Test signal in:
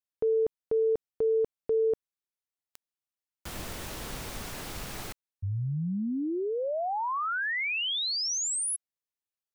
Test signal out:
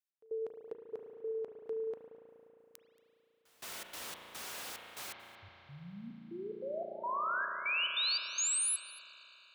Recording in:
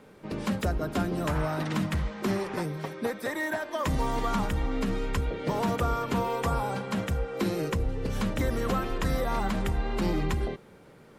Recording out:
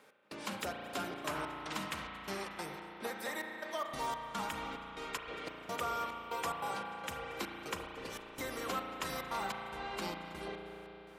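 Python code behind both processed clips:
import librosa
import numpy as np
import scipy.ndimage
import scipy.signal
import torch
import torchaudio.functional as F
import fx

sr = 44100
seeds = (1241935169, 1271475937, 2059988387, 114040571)

y = fx.highpass(x, sr, hz=1200.0, slope=6)
y = fx.dynamic_eq(y, sr, hz=1800.0, q=3.8, threshold_db=-51.0, ratio=4.0, max_db=-4)
y = fx.step_gate(y, sr, bpm=145, pattern='x..xxxx..xx.x', floor_db=-24.0, edge_ms=4.5)
y = y + 10.0 ** (-21.5 / 20.0) * np.pad(y, (int(228 * sr / 1000.0), 0))[:len(y)]
y = fx.rev_spring(y, sr, rt60_s=3.8, pass_ms=(35,), chirp_ms=75, drr_db=2.0)
y = F.gain(torch.from_numpy(y), -2.0).numpy()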